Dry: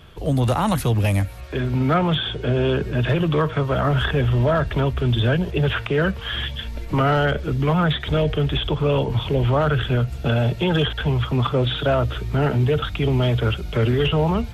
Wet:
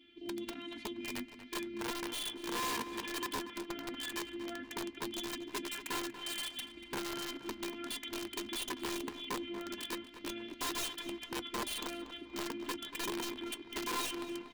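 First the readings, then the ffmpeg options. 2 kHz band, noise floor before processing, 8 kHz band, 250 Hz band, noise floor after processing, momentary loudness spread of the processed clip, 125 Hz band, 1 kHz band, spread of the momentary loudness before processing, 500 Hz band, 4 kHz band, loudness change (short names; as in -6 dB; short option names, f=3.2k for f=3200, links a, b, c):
-15.0 dB, -32 dBFS, n/a, -18.0 dB, -53 dBFS, 6 LU, -40.0 dB, -16.5 dB, 4 LU, -22.0 dB, -12.0 dB, -18.5 dB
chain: -filter_complex "[0:a]lowpass=7k,adynamicequalizer=threshold=0.0126:dfrequency=1600:dqfactor=7.1:tfrequency=1600:tqfactor=7.1:attack=5:release=100:ratio=0.375:range=1.5:mode=boostabove:tftype=bell,asplit=2[a][b];[b]acompressor=threshold=-27dB:ratio=6,volume=-2dB[c];[a][c]amix=inputs=2:normalize=0,afftfilt=real='hypot(re,im)*cos(PI*b)':imag='0':win_size=512:overlap=0.75,asplit=3[d][e][f];[d]bandpass=f=270:t=q:w=8,volume=0dB[g];[e]bandpass=f=2.29k:t=q:w=8,volume=-6dB[h];[f]bandpass=f=3.01k:t=q:w=8,volume=-9dB[i];[g][h][i]amix=inputs=3:normalize=0,aeval=exprs='(mod(42.2*val(0)+1,2)-1)/42.2':c=same,flanger=delay=3.9:depth=1.1:regen=70:speed=1.5:shape=sinusoidal,asplit=2[j][k];[k]adelay=237,lowpass=f=3.1k:p=1,volume=-11dB,asplit=2[l][m];[m]adelay=237,lowpass=f=3.1k:p=1,volume=0.47,asplit=2[n][o];[o]adelay=237,lowpass=f=3.1k:p=1,volume=0.47,asplit=2[p][q];[q]adelay=237,lowpass=f=3.1k:p=1,volume=0.47,asplit=2[r][s];[s]adelay=237,lowpass=f=3.1k:p=1,volume=0.47[t];[j][l][n][p][r][t]amix=inputs=6:normalize=0,volume=4.5dB"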